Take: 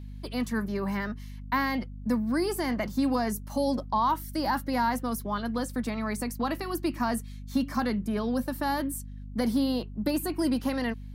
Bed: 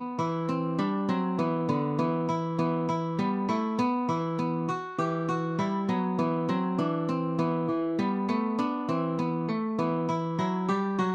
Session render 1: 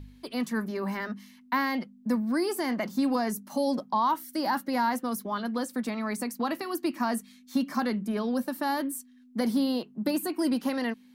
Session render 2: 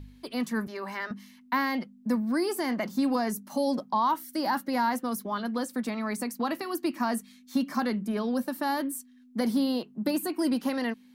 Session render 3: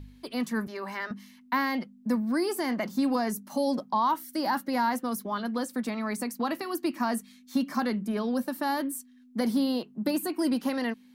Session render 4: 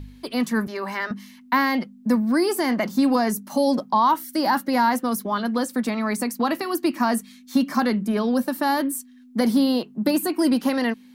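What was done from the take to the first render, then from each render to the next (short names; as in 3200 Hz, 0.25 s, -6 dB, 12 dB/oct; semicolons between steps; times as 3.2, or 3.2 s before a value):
de-hum 50 Hz, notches 4
0.67–1.11 weighting filter A
nothing audible
gain +7 dB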